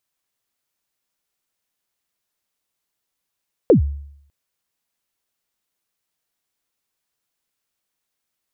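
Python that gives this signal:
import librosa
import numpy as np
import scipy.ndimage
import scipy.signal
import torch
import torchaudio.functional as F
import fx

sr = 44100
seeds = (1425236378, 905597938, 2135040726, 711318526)

y = fx.drum_kick(sr, seeds[0], length_s=0.6, level_db=-5.5, start_hz=560.0, end_hz=71.0, sweep_ms=112.0, decay_s=0.7, click=False)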